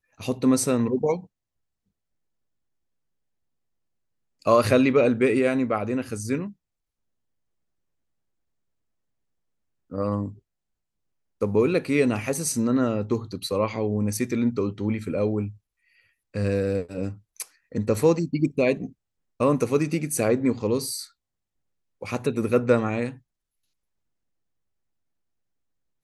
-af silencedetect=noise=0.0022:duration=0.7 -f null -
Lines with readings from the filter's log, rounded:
silence_start: 1.27
silence_end: 4.42 | silence_duration: 3.15
silence_start: 6.53
silence_end: 9.90 | silence_duration: 3.37
silence_start: 10.39
silence_end: 11.41 | silence_duration: 1.02
silence_start: 21.11
silence_end: 22.01 | silence_duration: 0.90
silence_start: 23.19
silence_end: 26.03 | silence_duration: 2.84